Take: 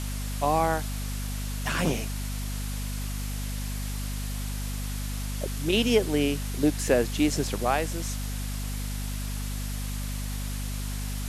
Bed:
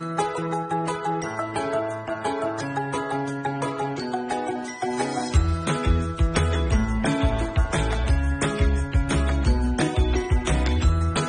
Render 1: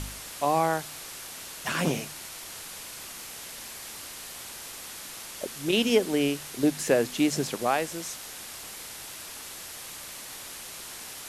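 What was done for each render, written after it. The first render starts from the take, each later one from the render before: de-hum 50 Hz, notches 5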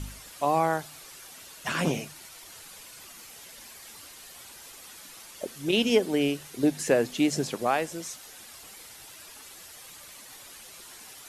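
noise reduction 9 dB, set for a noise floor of -42 dBFS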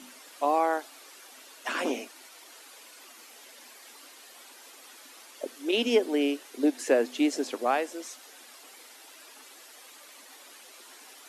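elliptic high-pass 250 Hz, stop band 40 dB; treble shelf 5.4 kHz -5.5 dB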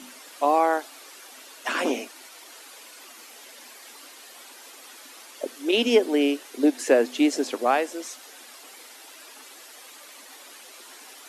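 trim +4.5 dB

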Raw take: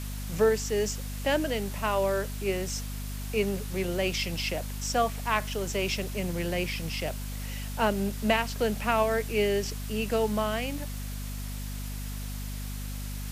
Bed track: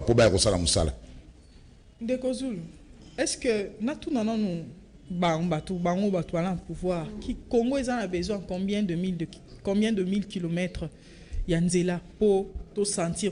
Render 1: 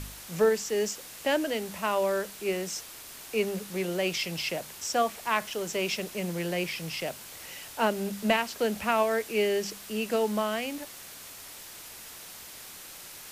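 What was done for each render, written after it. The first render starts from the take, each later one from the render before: de-hum 50 Hz, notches 5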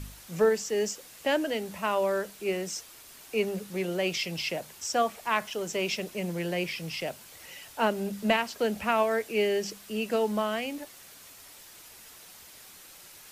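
noise reduction 6 dB, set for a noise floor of -45 dBFS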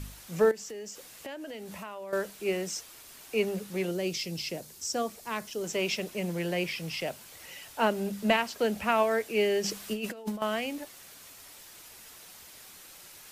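0.51–2.13 s: compression, threshold -38 dBFS; 3.91–5.64 s: high-order bell 1.4 kHz -8 dB 2.8 oct; 9.64–10.42 s: compressor with a negative ratio -33 dBFS, ratio -0.5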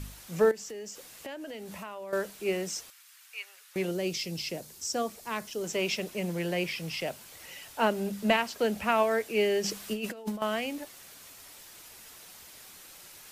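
2.90–3.76 s: ladder high-pass 1.1 kHz, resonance 25%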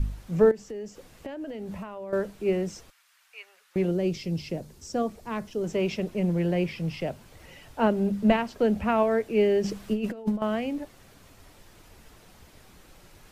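tilt EQ -3.5 dB/octave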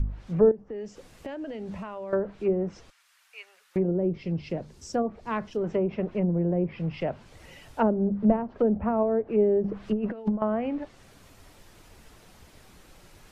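low-pass that closes with the level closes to 560 Hz, closed at -21.5 dBFS; dynamic bell 1.2 kHz, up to +5 dB, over -41 dBFS, Q 0.73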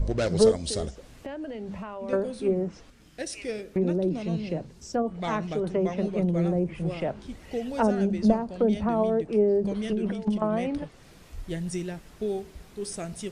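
add bed track -7.5 dB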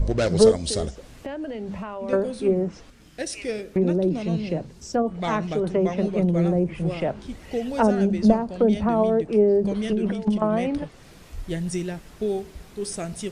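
trim +4 dB

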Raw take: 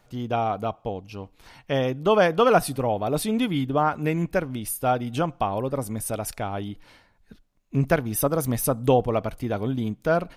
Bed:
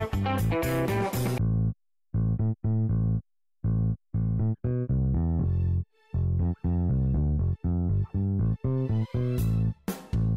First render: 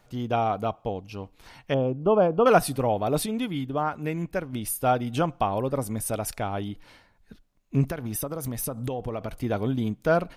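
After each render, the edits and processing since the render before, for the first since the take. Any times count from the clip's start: 1.74–2.46 s: boxcar filter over 23 samples; 3.26–4.53 s: gain -5 dB; 7.86–9.35 s: compression 12:1, threshold -26 dBFS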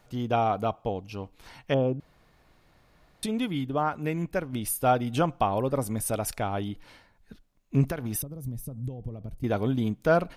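2.00–3.23 s: room tone; 8.22–9.44 s: FFT filter 140 Hz 0 dB, 1.4 kHz -24 dB, 12 kHz -12 dB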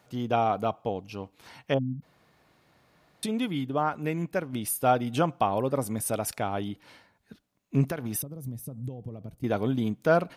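high-pass 110 Hz 12 dB/octave; 1.78–2.03 s: spectral selection erased 270–12000 Hz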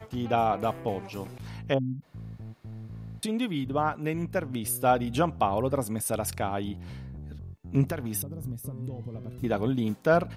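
add bed -15.5 dB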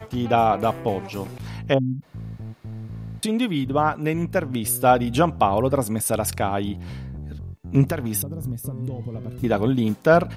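trim +6.5 dB

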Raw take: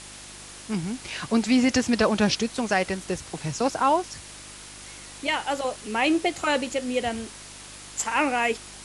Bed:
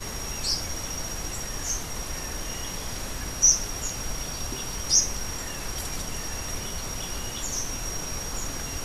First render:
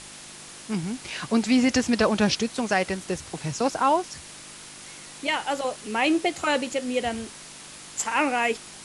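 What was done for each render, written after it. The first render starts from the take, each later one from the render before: de-hum 50 Hz, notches 2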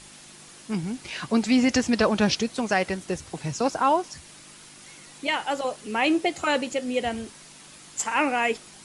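noise reduction 6 dB, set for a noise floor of -43 dBFS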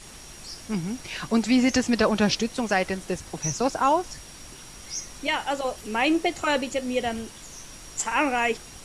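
add bed -13.5 dB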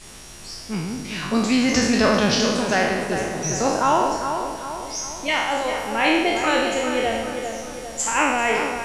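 spectral sustain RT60 1.10 s; tape echo 398 ms, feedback 55%, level -6 dB, low-pass 2.4 kHz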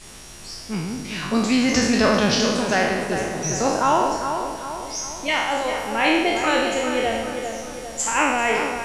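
no audible change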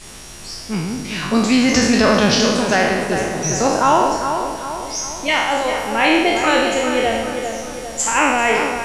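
trim +4.5 dB; peak limiter -3 dBFS, peak gain reduction 2 dB

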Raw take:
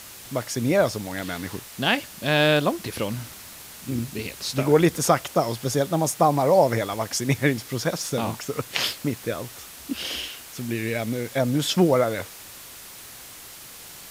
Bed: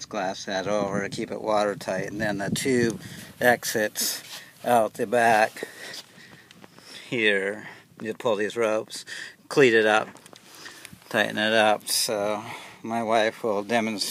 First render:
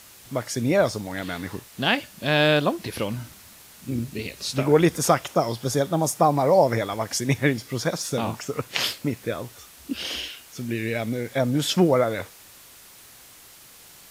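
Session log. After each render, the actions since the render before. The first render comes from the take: noise print and reduce 6 dB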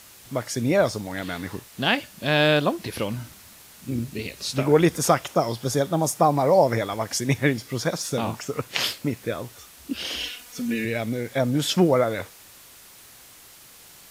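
10.20–10.85 s: comb 4.1 ms, depth 91%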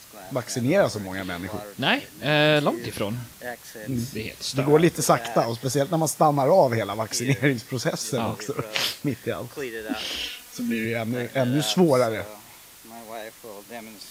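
add bed -15 dB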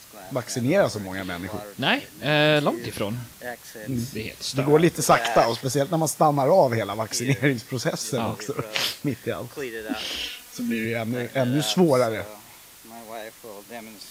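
5.11–5.61 s: overdrive pedal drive 14 dB, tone 5 kHz, clips at -6 dBFS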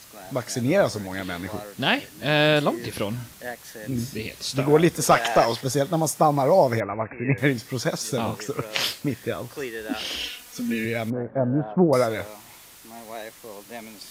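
6.80–7.38 s: brick-wall FIR low-pass 2.7 kHz; 11.10–11.93 s: low-pass 1.2 kHz 24 dB/octave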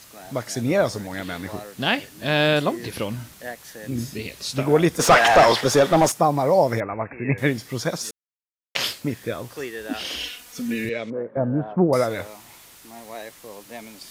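4.99–6.12 s: overdrive pedal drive 22 dB, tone 2.4 kHz, clips at -5 dBFS; 8.11–8.75 s: mute; 10.89–11.37 s: cabinet simulation 230–6000 Hz, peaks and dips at 270 Hz -4 dB, 500 Hz +5 dB, 750 Hz -9 dB, 1.5 kHz -4 dB, 5 kHz -5 dB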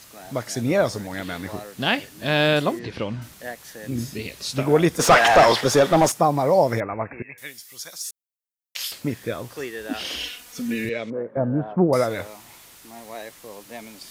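2.79–3.22 s: distance through air 130 m; 7.22–8.92 s: pre-emphasis filter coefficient 0.97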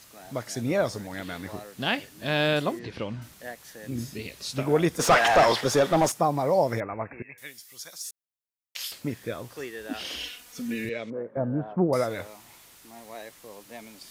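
trim -5 dB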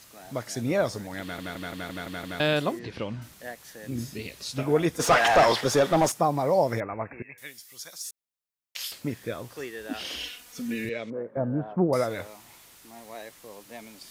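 1.21 s: stutter in place 0.17 s, 7 plays; 4.44–5.20 s: comb of notches 190 Hz

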